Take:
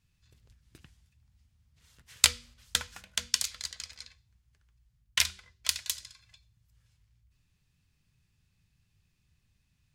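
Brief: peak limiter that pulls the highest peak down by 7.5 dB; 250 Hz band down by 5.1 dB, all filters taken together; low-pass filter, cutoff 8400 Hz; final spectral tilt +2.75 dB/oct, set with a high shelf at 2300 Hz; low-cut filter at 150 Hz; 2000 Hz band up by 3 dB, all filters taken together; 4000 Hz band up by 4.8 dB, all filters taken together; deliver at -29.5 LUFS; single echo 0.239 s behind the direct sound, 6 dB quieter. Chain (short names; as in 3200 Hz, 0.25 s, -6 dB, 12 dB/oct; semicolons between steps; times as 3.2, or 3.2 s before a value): HPF 150 Hz; LPF 8400 Hz; bell 250 Hz -5.5 dB; bell 2000 Hz +3 dB; high shelf 2300 Hz -3.5 dB; bell 4000 Hz +8.5 dB; limiter -5.5 dBFS; echo 0.239 s -6 dB; gain +0.5 dB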